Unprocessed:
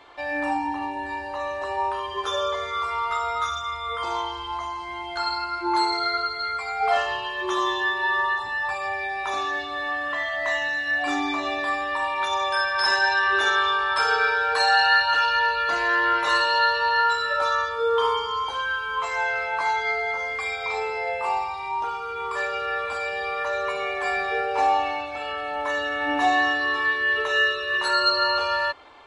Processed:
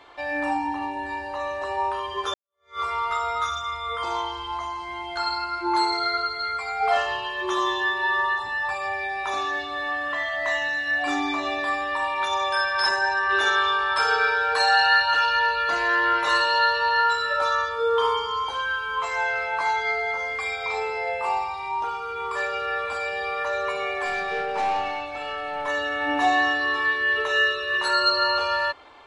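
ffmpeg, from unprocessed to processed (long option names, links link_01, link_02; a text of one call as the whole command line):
ffmpeg -i in.wav -filter_complex "[0:a]asplit=3[link_01][link_02][link_03];[link_01]afade=type=out:start_time=12.88:duration=0.02[link_04];[link_02]equalizer=frequency=3500:width_type=o:width=1.3:gain=-10.5,afade=type=in:start_time=12.88:duration=0.02,afade=type=out:start_time=13.29:duration=0.02[link_05];[link_03]afade=type=in:start_time=13.29:duration=0.02[link_06];[link_04][link_05][link_06]amix=inputs=3:normalize=0,asettb=1/sr,asplit=3[link_07][link_08][link_09];[link_07]atrim=end=24.054[link_10];[link_08]atrim=start=24.05:end=25.68,asetpts=PTS-STARTPTS,afade=type=in:duration=0.004:curve=qsin,afade=type=out:start_time=1.626:duration=0.004:curve=qsin,aeval=exprs='(tanh(10*val(0)+0.2)-tanh(0.2))/10':channel_layout=same[link_11];[link_09]atrim=start=25.676[link_12];[link_10][link_11]acrossfade=duration=0.004:curve1=hsin:curve2=qsin[link_13];[link_13][link_12]acrossfade=duration=0.004:curve1=qsin:curve2=hsin,asplit=2[link_14][link_15];[link_14]atrim=end=2.34,asetpts=PTS-STARTPTS,afade=type=out:start_time=2.336:duration=0.004:curve=hsin[link_16];[link_15]atrim=start=2.34,asetpts=PTS-STARTPTS,afade=type=in:duration=0.46:curve=exp[link_17];[link_16][link_17]concat=n=2:v=0:a=1" out.wav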